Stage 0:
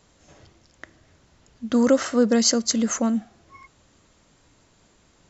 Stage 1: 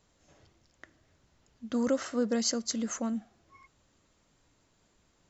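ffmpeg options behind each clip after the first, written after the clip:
-af "flanger=delay=0.1:depth=3.7:regen=90:speed=1.6:shape=triangular,volume=0.531"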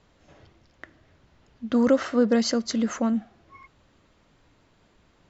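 -af "lowpass=3800,volume=2.66"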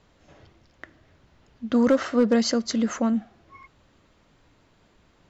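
-af "asoftclip=type=hard:threshold=0.211,volume=1.12"

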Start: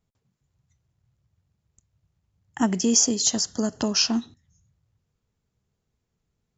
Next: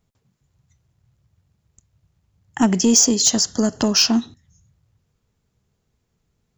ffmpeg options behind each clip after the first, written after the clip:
-af "asoftclip=type=tanh:threshold=0.224,volume=2.24"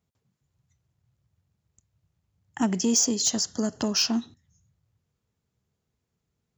-af "highpass=60,volume=0.398"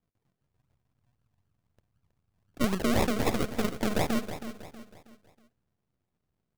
-filter_complex "[0:a]aeval=exprs='if(lt(val(0),0),0.251*val(0),val(0))':c=same,acrusher=samples=41:mix=1:aa=0.000001:lfo=1:lforange=24.6:lforate=3.9,asplit=2[s0][s1];[s1]aecho=0:1:320|640|960|1280:0.282|0.113|0.0451|0.018[s2];[s0][s2]amix=inputs=2:normalize=0"

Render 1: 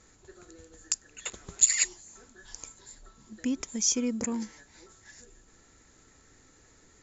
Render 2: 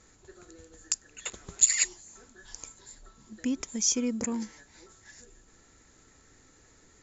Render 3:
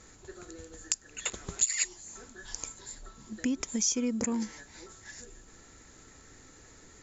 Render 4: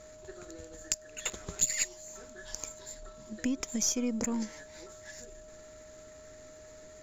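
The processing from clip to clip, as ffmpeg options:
-af anull
-af "acompressor=threshold=0.02:ratio=2.5,volume=1.78"
-af "aeval=exprs='if(lt(val(0),0),0.708*val(0),val(0))':c=same,aeval=exprs='val(0)+0.00316*sin(2*PI*620*n/s)':c=same"

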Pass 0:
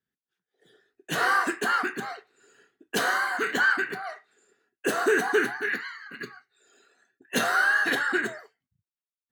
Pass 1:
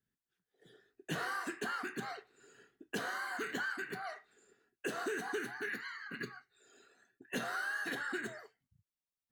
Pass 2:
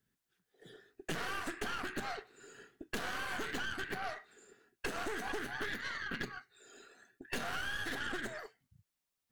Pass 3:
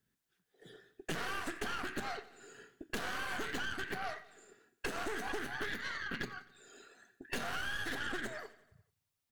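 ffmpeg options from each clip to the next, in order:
-filter_complex "[0:a]acrossover=split=2300|5800[s0][s1][s2];[s0]acompressor=threshold=0.0141:ratio=4[s3];[s1]acompressor=threshold=0.00501:ratio=4[s4];[s2]acompressor=threshold=0.00251:ratio=4[s5];[s3][s4][s5]amix=inputs=3:normalize=0,lowshelf=f=190:g=11,volume=0.668"
-af "aeval=exprs='0.0631*(cos(1*acos(clip(val(0)/0.0631,-1,1)))-cos(1*PI/2))+0.0112*(cos(5*acos(clip(val(0)/0.0631,-1,1)))-cos(5*PI/2))+0.02*(cos(6*acos(clip(val(0)/0.0631,-1,1)))-cos(6*PI/2))':c=same,acompressor=threshold=0.0178:ratio=6,volume=1.12"
-af "aecho=1:1:87|174|261|348|435:0.119|0.0701|0.0414|0.0244|0.0144"

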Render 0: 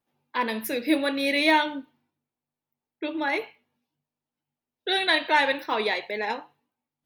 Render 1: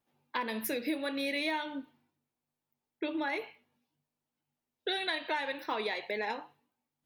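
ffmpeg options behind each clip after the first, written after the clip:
-af "acompressor=threshold=0.0282:ratio=6"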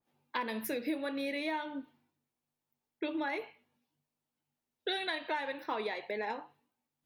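-af "adynamicequalizer=threshold=0.00355:dfrequency=2000:dqfactor=0.7:tfrequency=2000:tqfactor=0.7:attack=5:release=100:ratio=0.375:range=3.5:mode=cutabove:tftype=highshelf,volume=0.891"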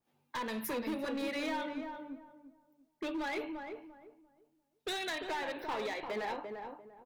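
-filter_complex "[0:a]volume=53.1,asoftclip=hard,volume=0.0188,asplit=2[s0][s1];[s1]adelay=345,lowpass=f=980:p=1,volume=0.631,asplit=2[s2][s3];[s3]adelay=345,lowpass=f=980:p=1,volume=0.29,asplit=2[s4][s5];[s5]adelay=345,lowpass=f=980:p=1,volume=0.29,asplit=2[s6][s7];[s7]adelay=345,lowpass=f=980:p=1,volume=0.29[s8];[s2][s4][s6][s8]amix=inputs=4:normalize=0[s9];[s0][s9]amix=inputs=2:normalize=0,volume=1.12"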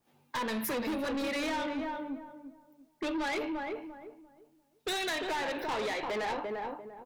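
-af "asoftclip=type=tanh:threshold=0.0119,volume=2.66"

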